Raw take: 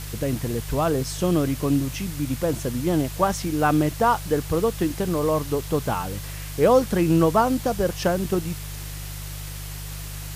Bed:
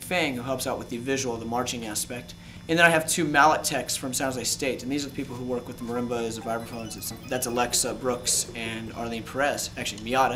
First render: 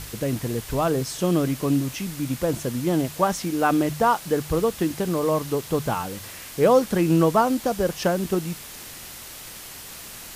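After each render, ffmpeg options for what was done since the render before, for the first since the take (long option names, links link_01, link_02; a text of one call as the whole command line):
ffmpeg -i in.wav -af "bandreject=frequency=50:width_type=h:width=4,bandreject=frequency=100:width_type=h:width=4,bandreject=frequency=150:width_type=h:width=4" out.wav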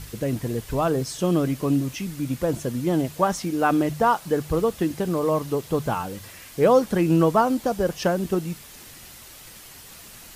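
ffmpeg -i in.wav -af "afftdn=noise_reduction=6:noise_floor=-40" out.wav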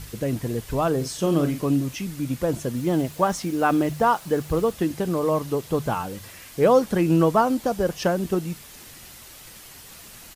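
ffmpeg -i in.wav -filter_complex "[0:a]asplit=3[link_01][link_02][link_03];[link_01]afade=type=out:start_time=1.02:duration=0.02[link_04];[link_02]asplit=2[link_05][link_06];[link_06]adelay=42,volume=-8.5dB[link_07];[link_05][link_07]amix=inputs=2:normalize=0,afade=type=in:start_time=1.02:duration=0.02,afade=type=out:start_time=1.6:duration=0.02[link_08];[link_03]afade=type=in:start_time=1.6:duration=0.02[link_09];[link_04][link_08][link_09]amix=inputs=3:normalize=0,asettb=1/sr,asplit=3[link_10][link_11][link_12];[link_10]atrim=end=2.764[link_13];[link_11]atrim=start=2.76:end=4.72,asetpts=PTS-STARTPTS,afade=type=in:duration=0.004:curve=qsin,afade=type=out:start_time=1.956:duration=0.004:curve=qsin,acrusher=bits=9:dc=4:mix=0:aa=0.000001[link_14];[link_12]atrim=start=4.716[link_15];[link_13][link_14]acrossfade=duration=0.004:curve1=hsin:curve2=qsin[link_16];[link_16][link_15]acrossfade=duration=0.004:curve1=qsin:curve2=hsin" out.wav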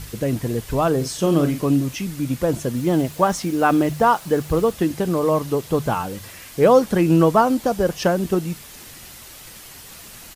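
ffmpeg -i in.wav -af "volume=3.5dB" out.wav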